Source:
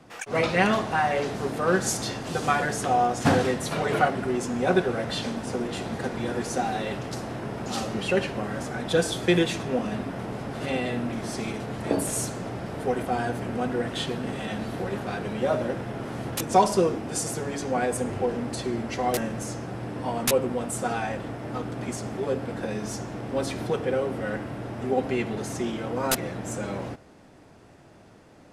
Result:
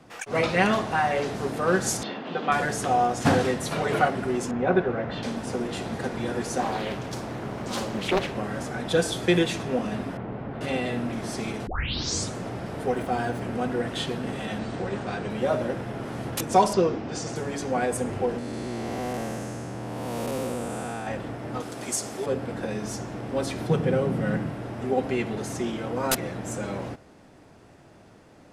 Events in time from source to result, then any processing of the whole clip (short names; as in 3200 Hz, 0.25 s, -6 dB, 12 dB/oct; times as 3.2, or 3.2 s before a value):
2.03–2.52 Chebyshev band-pass 190–3400 Hz, order 3
4.51–5.23 LPF 2200 Hz
6.6–8.35 Doppler distortion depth 0.92 ms
10.17–10.61 air absorption 490 m
11.67 tape start 0.68 s
12.86–13.41 median filter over 3 samples
14.59–15.3 brick-wall FIR low-pass 9300 Hz
16.73–17.36 LPF 6000 Hz 24 dB/oct
18.38–21.07 time blur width 0.422 s
21.6–22.26 tone controls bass -9 dB, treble +12 dB
23.7–24.5 bell 160 Hz +14.5 dB